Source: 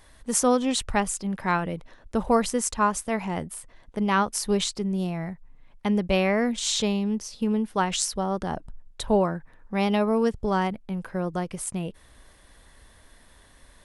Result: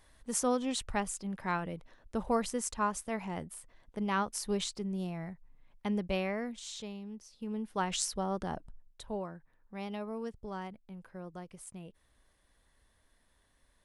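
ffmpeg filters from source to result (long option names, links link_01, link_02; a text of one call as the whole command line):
ffmpeg -i in.wav -af "volume=2dB,afade=type=out:start_time=6.01:duration=0.68:silence=0.354813,afade=type=in:start_time=7.34:duration=0.61:silence=0.281838,afade=type=out:start_time=8.46:duration=0.59:silence=0.334965" out.wav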